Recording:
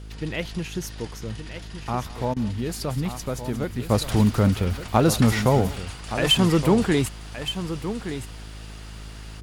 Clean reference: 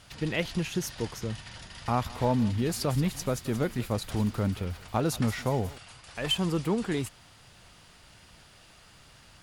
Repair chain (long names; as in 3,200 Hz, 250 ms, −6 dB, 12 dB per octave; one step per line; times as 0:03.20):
hum removal 53.1 Hz, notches 9
repair the gap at 0:02.34, 23 ms
echo removal 1,170 ms −10.5 dB
level correction −9 dB, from 0:03.89